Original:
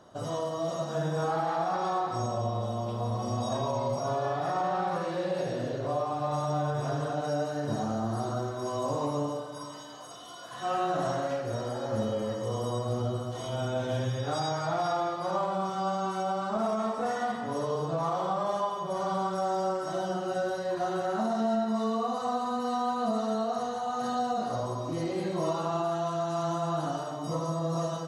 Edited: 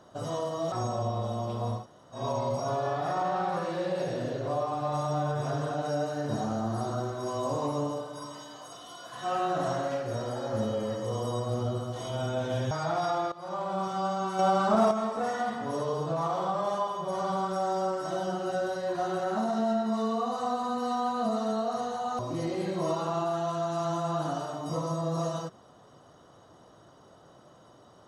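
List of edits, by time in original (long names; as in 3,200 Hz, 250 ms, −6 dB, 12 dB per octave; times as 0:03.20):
0:00.72–0:02.11: remove
0:03.18–0:03.58: fill with room tone, crossfade 0.16 s
0:14.10–0:14.53: remove
0:15.14–0:15.63: fade in, from −15 dB
0:16.21–0:16.73: clip gain +6.5 dB
0:24.01–0:24.77: remove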